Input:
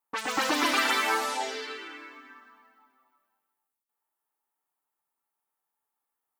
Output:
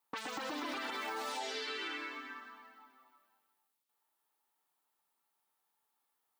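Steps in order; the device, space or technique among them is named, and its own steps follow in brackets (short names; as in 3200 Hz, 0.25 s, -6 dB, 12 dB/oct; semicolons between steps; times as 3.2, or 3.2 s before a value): broadcast voice chain (HPF 80 Hz; de-esser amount 90%; compressor 4:1, threshold -40 dBFS, peak gain reduction 12.5 dB; bell 3800 Hz +5 dB 1 oct; limiter -32.5 dBFS, peak gain reduction 5.5 dB); gain +2.5 dB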